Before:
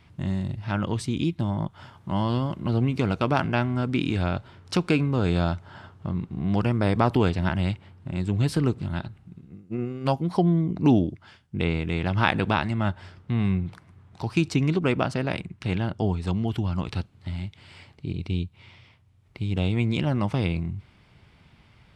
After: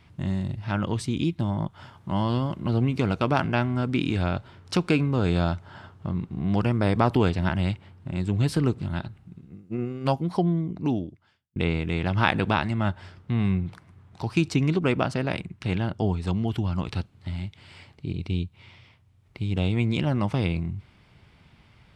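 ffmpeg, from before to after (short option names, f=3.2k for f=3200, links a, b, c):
-filter_complex "[0:a]asplit=2[a][b];[a]atrim=end=11.56,asetpts=PTS-STARTPTS,afade=t=out:st=10.11:d=1.45[c];[b]atrim=start=11.56,asetpts=PTS-STARTPTS,afade=t=in:d=0.004:c=hsin[d];[c][d]concat=n=2:v=0:a=1"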